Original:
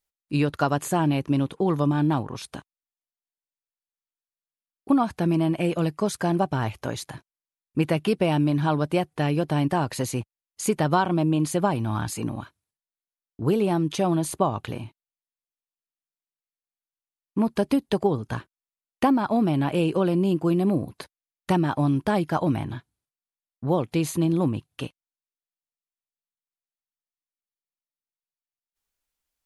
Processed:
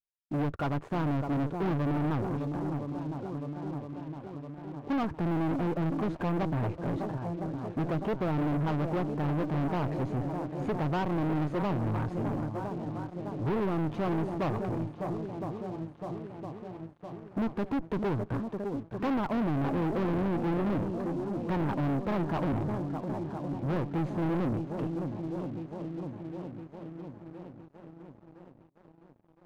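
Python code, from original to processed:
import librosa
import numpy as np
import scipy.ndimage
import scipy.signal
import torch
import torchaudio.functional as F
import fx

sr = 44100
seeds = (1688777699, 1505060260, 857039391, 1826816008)

y = fx.echo_swing(x, sr, ms=1012, ratio=1.5, feedback_pct=55, wet_db=-12.5)
y = fx.tube_stage(y, sr, drive_db=23.0, bias=0.75)
y = scipy.signal.sosfilt(scipy.signal.butter(2, 1000.0, 'lowpass', fs=sr, output='sos'), y)
y = fx.leveller(y, sr, passes=3)
y = y * librosa.db_to_amplitude(-6.0)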